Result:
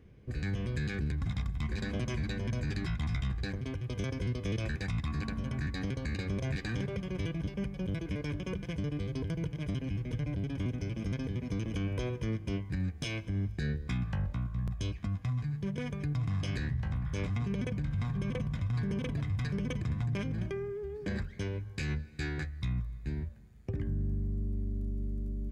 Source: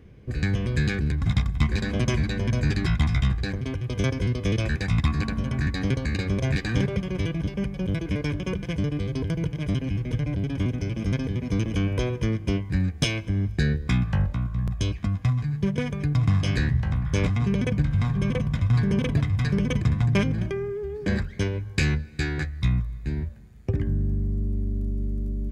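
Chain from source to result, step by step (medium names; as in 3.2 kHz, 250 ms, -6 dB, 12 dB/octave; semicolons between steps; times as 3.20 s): peak limiter -18 dBFS, peak gain reduction 8.5 dB; trim -7.5 dB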